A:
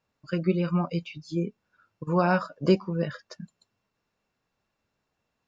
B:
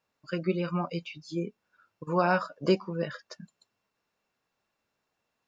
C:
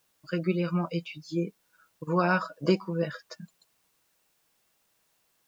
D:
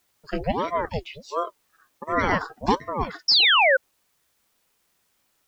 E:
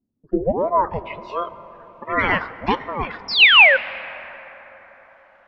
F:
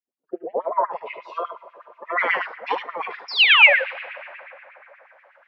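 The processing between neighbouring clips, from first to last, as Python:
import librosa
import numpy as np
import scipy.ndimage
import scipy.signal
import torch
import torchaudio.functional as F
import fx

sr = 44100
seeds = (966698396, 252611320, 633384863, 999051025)

y1 = fx.low_shelf(x, sr, hz=200.0, db=-10.5)
y2 = y1 + 0.48 * np.pad(y1, (int(6.2 * sr / 1000.0), 0))[:len(y1)]
y2 = fx.quant_dither(y2, sr, seeds[0], bits=12, dither='triangular')
y3 = fx.spec_paint(y2, sr, seeds[1], shape='fall', start_s=3.28, length_s=0.49, low_hz=970.0, high_hz=5500.0, level_db=-19.0)
y3 = fx.ring_lfo(y3, sr, carrier_hz=510.0, swing_pct=70, hz=1.4)
y3 = y3 * 10.0 ** (5.0 / 20.0)
y4 = fx.filter_sweep_lowpass(y3, sr, from_hz=240.0, to_hz=2600.0, start_s=0.16, end_s=1.24, q=4.3)
y4 = fx.rev_plate(y4, sr, seeds[2], rt60_s=4.9, hf_ratio=0.35, predelay_ms=0, drr_db=14.5)
y5 = y4 + 10.0 ** (-6.5 / 20.0) * np.pad(y4, (int(74 * sr / 1000.0), 0))[:len(y4)]
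y5 = fx.filter_lfo_highpass(y5, sr, shape='sine', hz=8.3, low_hz=440.0, high_hz=2400.0, q=2.8)
y5 = y5 * 10.0 ** (-7.0 / 20.0)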